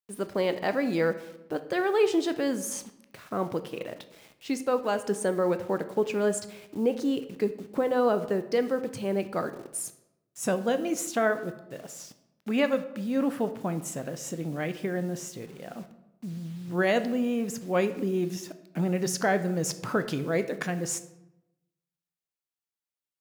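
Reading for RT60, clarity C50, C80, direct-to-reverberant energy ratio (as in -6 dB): 0.90 s, 13.0 dB, 16.0 dB, 10.0 dB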